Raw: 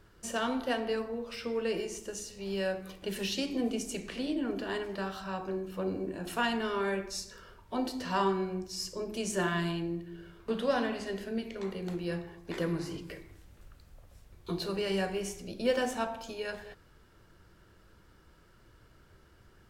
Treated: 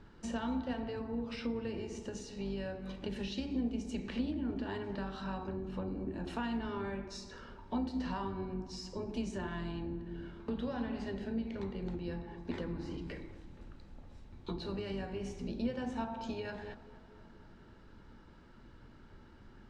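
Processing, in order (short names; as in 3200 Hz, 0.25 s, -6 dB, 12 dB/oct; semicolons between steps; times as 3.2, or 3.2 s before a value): octaver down 2 oct, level -1 dB; compressor 6:1, threshold -39 dBFS, peak gain reduction 15.5 dB; air absorption 110 m; de-hum 54.57 Hz, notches 27; small resonant body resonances 240/860/3900 Hz, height 10 dB, ringing for 40 ms; on a send: tape echo 0.24 s, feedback 74%, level -17 dB, low-pass 1800 Hz; on the sum: gain +1 dB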